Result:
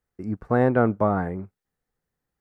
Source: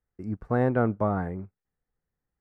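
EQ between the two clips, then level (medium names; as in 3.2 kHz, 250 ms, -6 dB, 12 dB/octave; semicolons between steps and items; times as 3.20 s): bass shelf 98 Hz -7.5 dB; +5.0 dB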